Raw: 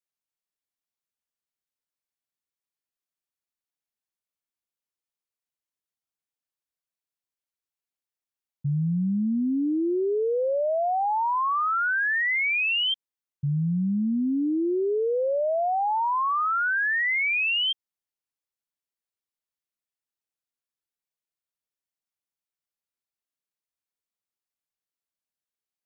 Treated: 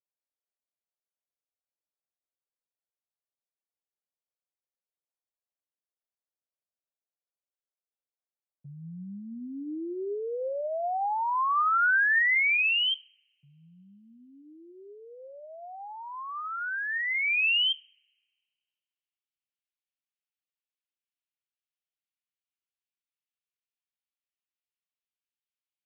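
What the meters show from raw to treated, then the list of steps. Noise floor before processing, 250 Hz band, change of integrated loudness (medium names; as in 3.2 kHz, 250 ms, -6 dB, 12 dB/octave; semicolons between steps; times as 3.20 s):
under -85 dBFS, -16.0 dB, -1.0 dB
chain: two-slope reverb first 0.45 s, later 1.9 s, from -28 dB, DRR 16 dB; band-pass sweep 580 Hz -> 2.8 kHz, 9.75–13.00 s; peaking EQ 1.4 kHz +2.5 dB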